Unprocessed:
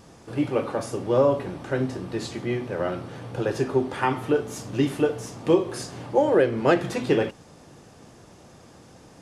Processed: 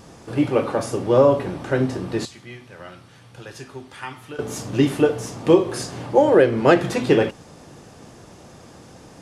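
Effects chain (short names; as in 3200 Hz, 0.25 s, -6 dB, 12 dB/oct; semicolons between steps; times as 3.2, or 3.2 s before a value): 2.25–4.39 passive tone stack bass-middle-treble 5-5-5; gain +5 dB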